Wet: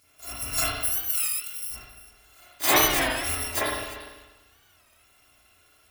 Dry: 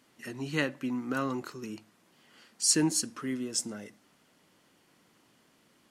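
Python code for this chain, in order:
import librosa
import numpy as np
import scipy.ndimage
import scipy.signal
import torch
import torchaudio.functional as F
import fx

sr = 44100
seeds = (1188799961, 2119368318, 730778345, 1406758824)

y = fx.bit_reversed(x, sr, seeds[0], block=256)
y = fx.pre_emphasis(y, sr, coefficient=0.97, at=(0.72, 1.71))
y = y + 10.0 ** (-16.0 / 20.0) * np.pad(y, (int(346 * sr / 1000.0), 0))[:len(y)]
y = fx.rev_spring(y, sr, rt60_s=1.1, pass_ms=(35, 49), chirp_ms=55, drr_db=-9.5)
y = fx.record_warp(y, sr, rpm=33.33, depth_cents=160.0)
y = y * 10.0 ** (2.0 / 20.0)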